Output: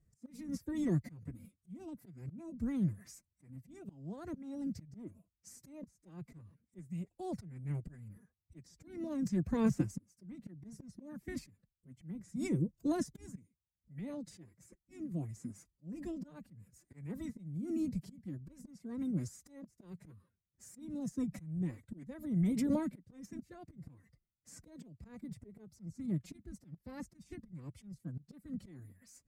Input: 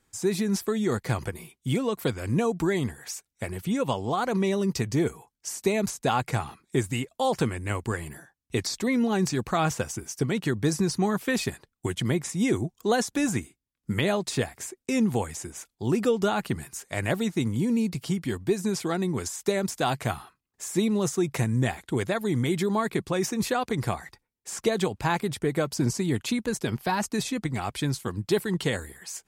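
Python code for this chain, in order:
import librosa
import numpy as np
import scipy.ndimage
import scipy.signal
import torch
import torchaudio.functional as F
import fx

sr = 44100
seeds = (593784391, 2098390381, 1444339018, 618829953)

y = fx.curve_eq(x, sr, hz=(150.0, 1100.0, 1900.0, 3100.0, 4900.0), db=(0, -27, -18, -30, -20))
y = fx.auto_swell(y, sr, attack_ms=771.0)
y = fx.pitch_keep_formants(y, sr, semitones=6.0)
y = F.gain(torch.from_numpy(y), 3.0).numpy()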